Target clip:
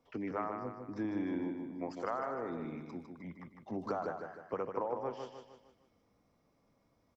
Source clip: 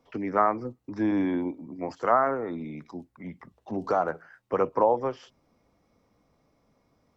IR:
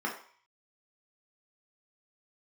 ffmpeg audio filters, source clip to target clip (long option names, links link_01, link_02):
-af "acompressor=threshold=-27dB:ratio=6,aecho=1:1:153|306|459|612|765:0.501|0.226|0.101|0.0457|0.0206,volume=-6.5dB"